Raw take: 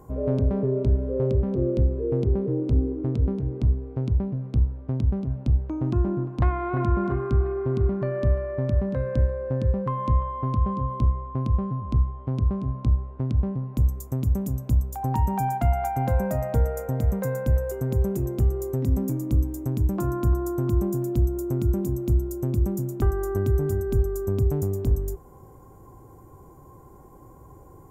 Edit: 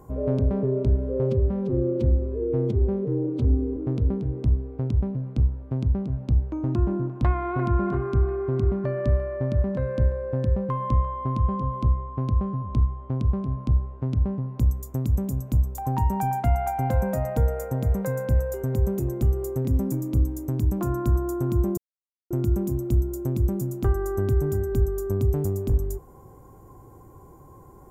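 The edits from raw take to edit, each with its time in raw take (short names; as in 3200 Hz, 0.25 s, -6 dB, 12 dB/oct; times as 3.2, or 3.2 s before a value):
1.29–2.94 stretch 1.5×
20.95–21.48 mute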